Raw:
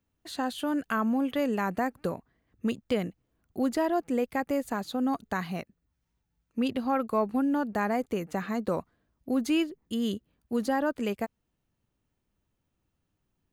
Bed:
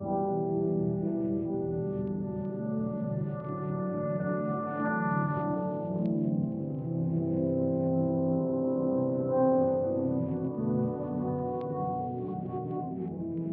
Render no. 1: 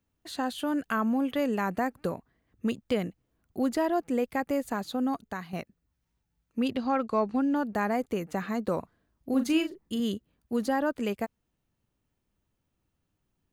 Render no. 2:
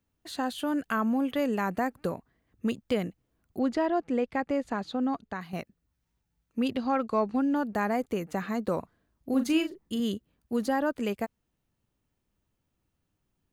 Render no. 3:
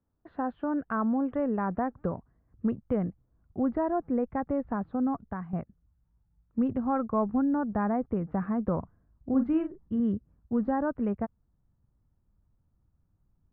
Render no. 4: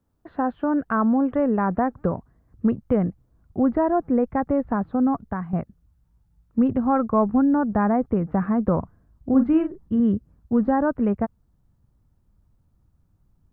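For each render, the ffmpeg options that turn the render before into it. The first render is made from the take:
ffmpeg -i in.wav -filter_complex "[0:a]asettb=1/sr,asplit=3[link_01][link_02][link_03];[link_01]atrim=end=6.764[link_04];[link_02]atrim=start=6.76:end=7.56,asetpts=PTS-STARTPTS,afade=type=in:duration=0.004:curve=qsin,afade=type=out:start_time=0.796:duration=0.004:curve=qsin,lowpass=frequency=5600:width_type=q:width=1.6[link_05];[link_03]atrim=start=7.556[link_06];[link_04][link_05]acrossfade=duration=0.004:curve1=hsin:curve2=qsin[link_07];[link_07][link_06]acrossfade=duration=0.004:curve1=qsin:curve2=hsin,asettb=1/sr,asplit=3[link_08][link_09][link_10];[link_08]atrim=end=8.794[link_11];[link_09]atrim=start=8.79:end=10,asetpts=PTS-STARTPTS,afade=type=in:duration=0.004:curve=qsin,afade=type=out:start_time=1.206:duration=0.004:curve=qsin,asplit=2[link_12][link_13];[link_13]adelay=38,volume=-8dB[link_14];[link_12][link_14]amix=inputs=2:normalize=0,atrim=end_sample=53361[link_15];[link_10]atrim=start=9.996[link_16];[link_11][link_15]acrossfade=duration=0.004:curve1=hsin:curve2=qsin[link_17];[link_17][link_16]acrossfade=duration=0.004:curve1=qsin:curve2=hsin,asplit=2[link_18][link_19];[link_18]atrim=end=5.53,asetpts=PTS-STARTPTS,afade=type=out:start_time=5:duration=0.53:silence=0.316228[link_20];[link_19]atrim=start=5.53,asetpts=PTS-STARTPTS,afade=type=in:duration=0.004:curve=hsin:silence=0.316228[link_21];[link_20][link_21]concat=n=2:v=0:a=1" out.wav
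ffmpeg -i in.wav -filter_complex "[0:a]asettb=1/sr,asplit=3[link_01][link_02][link_03];[link_01]atrim=end=3.594[link_04];[link_02]atrim=start=3.59:end=5.41,asetpts=PTS-STARTPTS,afade=type=in:duration=0.004:curve=qsin,afade=type=out:start_time=1.816:duration=0.004:curve=qsin,lowpass=4600[link_05];[link_03]atrim=start=5.406[link_06];[link_04][link_05]acrossfade=duration=0.004:curve1=hsin:curve2=qsin[link_07];[link_07][link_06]acrossfade=duration=0.004:curve1=qsin:curve2=hsin" out.wav
ffmpeg -i in.wav -af "asubboost=boost=3.5:cutoff=180,lowpass=frequency=1400:width=0.5412,lowpass=frequency=1400:width=1.3066" out.wav
ffmpeg -i in.wav -af "volume=7.5dB" out.wav

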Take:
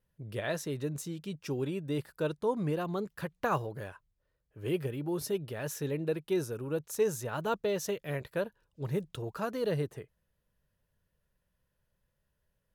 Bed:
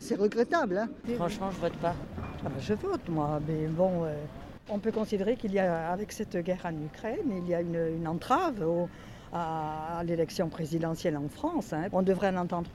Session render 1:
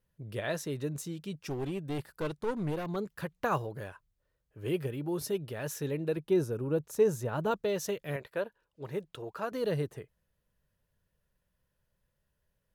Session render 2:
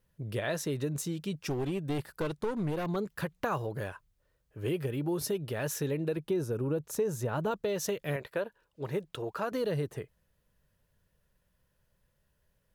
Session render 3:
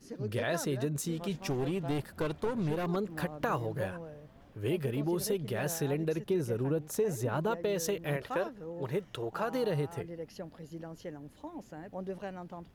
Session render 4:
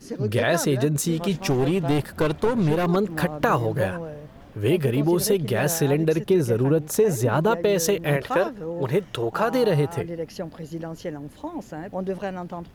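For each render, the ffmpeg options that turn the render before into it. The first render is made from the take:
ffmpeg -i in.wav -filter_complex "[0:a]asplit=3[link_01][link_02][link_03];[link_01]afade=type=out:start_time=1.33:duration=0.02[link_04];[link_02]aeval=exprs='clip(val(0),-1,0.0188)':channel_layout=same,afade=type=in:start_time=1.33:duration=0.02,afade=type=out:start_time=2.95:duration=0.02[link_05];[link_03]afade=type=in:start_time=2.95:duration=0.02[link_06];[link_04][link_05][link_06]amix=inputs=3:normalize=0,asettb=1/sr,asplit=3[link_07][link_08][link_09];[link_07]atrim=end=6.174[link_10];[link_08]atrim=start=6.17:end=7.51,asetpts=PTS-STARTPTS,afade=type=in:duration=0.004:curve=qsin,afade=type=out:start_time=1.336:duration=0.004:curve=qsin,tiltshelf=frequency=1100:gain=4.5[link_11];[link_09]atrim=start=7.506[link_12];[link_10][link_11]acrossfade=duration=0.004:curve1=hsin:curve2=qsin[link_13];[link_13][link_12]acrossfade=duration=0.004:curve1=qsin:curve2=hsin,asettb=1/sr,asplit=3[link_14][link_15][link_16];[link_14]atrim=end=8.164[link_17];[link_15]atrim=start=8.16:end=9.52,asetpts=PTS-STARTPTS,afade=type=in:duration=0.004:curve=qsin,afade=type=out:start_time=1.356:duration=0.004:curve=qsin,bass=frequency=250:gain=-10,treble=frequency=4000:gain=-6[link_18];[link_16]atrim=start=9.516[link_19];[link_17][link_18]acrossfade=duration=0.004:curve1=hsin:curve2=qsin[link_20];[link_20][link_19]acrossfade=duration=0.004:curve1=qsin:curve2=hsin" out.wav
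ffmpeg -i in.wav -filter_complex "[0:a]asplit=2[link_01][link_02];[link_02]alimiter=level_in=2dB:limit=-24dB:level=0:latency=1:release=38,volume=-2dB,volume=-2dB[link_03];[link_01][link_03]amix=inputs=2:normalize=0,acompressor=threshold=-29dB:ratio=3" out.wav
ffmpeg -i in.wav -i bed.wav -filter_complex "[1:a]volume=-13dB[link_01];[0:a][link_01]amix=inputs=2:normalize=0" out.wav
ffmpeg -i in.wav -af "volume=11dB" out.wav

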